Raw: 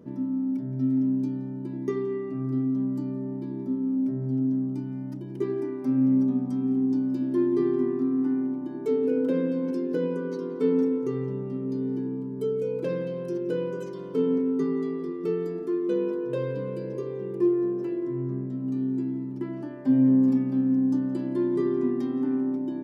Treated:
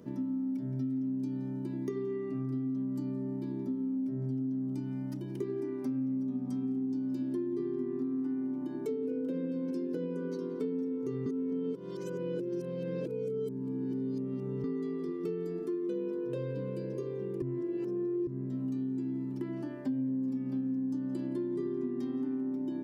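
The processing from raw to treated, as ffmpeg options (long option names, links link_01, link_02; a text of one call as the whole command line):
ffmpeg -i in.wav -filter_complex "[0:a]asplit=5[link_01][link_02][link_03][link_04][link_05];[link_01]atrim=end=11.262[link_06];[link_02]atrim=start=11.258:end=14.642,asetpts=PTS-STARTPTS,areverse[link_07];[link_03]atrim=start=14.638:end=17.422[link_08];[link_04]atrim=start=17.418:end=18.272,asetpts=PTS-STARTPTS,areverse[link_09];[link_05]atrim=start=18.268[link_10];[link_06][link_07]acrossfade=duration=0.004:curve1=hsin:curve2=hsin[link_11];[link_11][link_08]acrossfade=duration=0.004:curve1=hsin:curve2=hsin[link_12];[link_12][link_09]acrossfade=duration=0.004:curve1=hsin:curve2=hsin[link_13];[link_13][link_10]acrossfade=duration=0.004:curve1=hsin:curve2=hsin,acrossover=split=470[link_14][link_15];[link_15]acompressor=threshold=-50dB:ratio=2[link_16];[link_14][link_16]amix=inputs=2:normalize=0,highshelf=frequency=2100:gain=9,acompressor=threshold=-29dB:ratio=6,volume=-2dB" out.wav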